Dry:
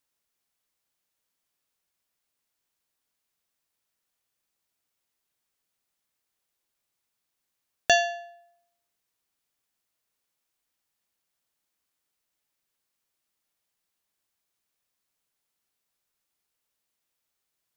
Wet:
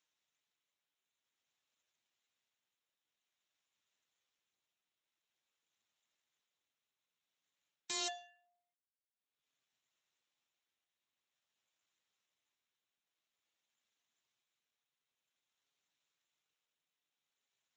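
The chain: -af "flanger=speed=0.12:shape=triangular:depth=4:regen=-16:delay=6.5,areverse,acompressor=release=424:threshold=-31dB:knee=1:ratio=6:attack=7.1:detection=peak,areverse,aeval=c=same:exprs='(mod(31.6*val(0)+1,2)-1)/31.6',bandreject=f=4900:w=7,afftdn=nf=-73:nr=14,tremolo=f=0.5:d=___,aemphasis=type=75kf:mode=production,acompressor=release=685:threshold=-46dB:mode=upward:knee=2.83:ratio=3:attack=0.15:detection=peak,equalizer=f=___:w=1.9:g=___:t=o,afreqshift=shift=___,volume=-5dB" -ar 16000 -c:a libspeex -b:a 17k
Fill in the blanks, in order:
0.8, 68, -3.5, 13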